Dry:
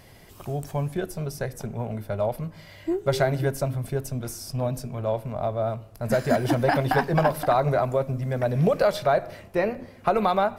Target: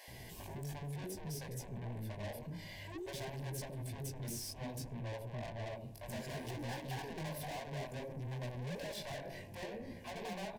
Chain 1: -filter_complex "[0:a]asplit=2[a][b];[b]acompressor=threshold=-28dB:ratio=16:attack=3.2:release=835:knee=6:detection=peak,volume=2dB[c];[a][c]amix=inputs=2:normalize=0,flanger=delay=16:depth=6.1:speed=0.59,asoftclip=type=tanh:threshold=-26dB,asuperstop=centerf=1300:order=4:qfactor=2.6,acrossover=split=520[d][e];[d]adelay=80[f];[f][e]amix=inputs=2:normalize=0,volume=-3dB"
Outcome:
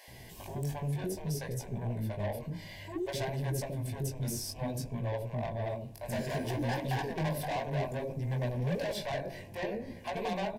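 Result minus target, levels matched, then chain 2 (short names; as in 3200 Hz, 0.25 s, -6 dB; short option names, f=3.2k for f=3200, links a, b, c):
compressor: peak gain reduction -6 dB; soft clip: distortion -5 dB
-filter_complex "[0:a]asplit=2[a][b];[b]acompressor=threshold=-34.5dB:ratio=16:attack=3.2:release=835:knee=6:detection=peak,volume=2dB[c];[a][c]amix=inputs=2:normalize=0,flanger=delay=16:depth=6.1:speed=0.59,asoftclip=type=tanh:threshold=-37.5dB,asuperstop=centerf=1300:order=4:qfactor=2.6,acrossover=split=520[d][e];[d]adelay=80[f];[f][e]amix=inputs=2:normalize=0,volume=-3dB"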